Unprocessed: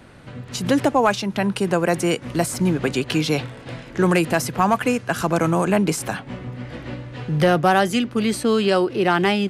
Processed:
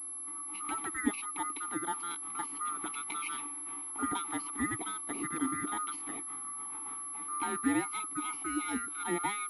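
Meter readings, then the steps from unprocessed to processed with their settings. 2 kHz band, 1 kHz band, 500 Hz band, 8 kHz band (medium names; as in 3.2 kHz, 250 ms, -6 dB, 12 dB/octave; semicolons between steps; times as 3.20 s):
-14.5 dB, -13.5 dB, -26.0 dB, -2.5 dB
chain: split-band scrambler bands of 1 kHz; level-controlled noise filter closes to 2.5 kHz, open at -13 dBFS; vowel filter u; class-D stage that switches slowly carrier 11 kHz; trim +3 dB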